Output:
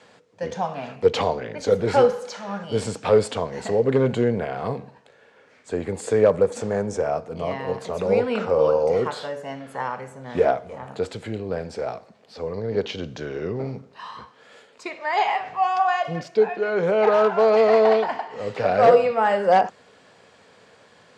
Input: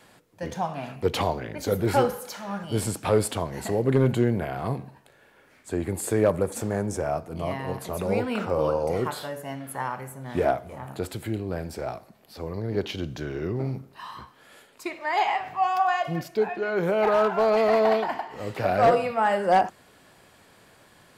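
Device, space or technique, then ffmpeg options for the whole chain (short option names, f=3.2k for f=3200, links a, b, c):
car door speaker: -af "highpass=110,equalizer=f=140:t=q:w=4:g=-4,equalizer=f=330:t=q:w=4:g=-7,equalizer=f=470:t=q:w=4:g=8,lowpass=f=7.2k:w=0.5412,lowpass=f=7.2k:w=1.3066,volume=2dB"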